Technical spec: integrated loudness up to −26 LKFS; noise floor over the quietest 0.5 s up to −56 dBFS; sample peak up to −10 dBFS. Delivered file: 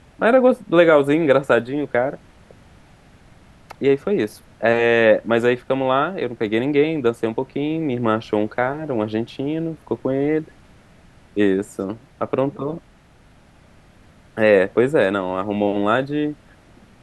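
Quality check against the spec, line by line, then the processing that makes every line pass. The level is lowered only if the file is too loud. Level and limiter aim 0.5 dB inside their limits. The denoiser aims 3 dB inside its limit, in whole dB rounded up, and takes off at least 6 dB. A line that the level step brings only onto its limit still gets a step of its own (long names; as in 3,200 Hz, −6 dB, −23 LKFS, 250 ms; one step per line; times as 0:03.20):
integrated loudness −19.5 LKFS: out of spec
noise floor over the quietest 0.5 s −51 dBFS: out of spec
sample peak −3.0 dBFS: out of spec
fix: level −7 dB
brickwall limiter −10.5 dBFS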